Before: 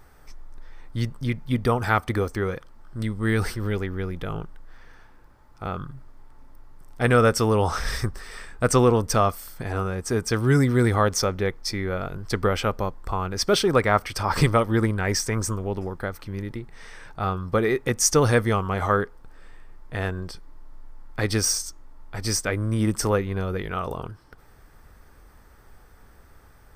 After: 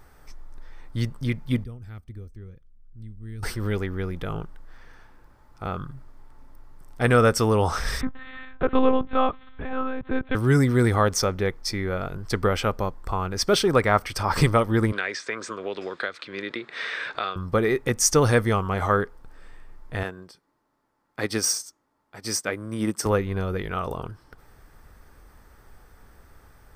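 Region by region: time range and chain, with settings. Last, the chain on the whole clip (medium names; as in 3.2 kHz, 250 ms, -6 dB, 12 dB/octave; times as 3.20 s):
1.64–3.43 s: amplifier tone stack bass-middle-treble 10-0-1 + tape noise reduction on one side only decoder only
8.01–10.35 s: de-esser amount 75% + monotone LPC vocoder at 8 kHz 260 Hz
14.92–17.36 s: cabinet simulation 450–6400 Hz, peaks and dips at 850 Hz -10 dB, 1.6 kHz +4 dB, 2.4 kHz +5 dB, 3.7 kHz +9 dB, 5.8 kHz -8 dB + three bands compressed up and down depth 100%
20.03–23.06 s: high-pass 170 Hz + upward expansion, over -43 dBFS
whole clip: none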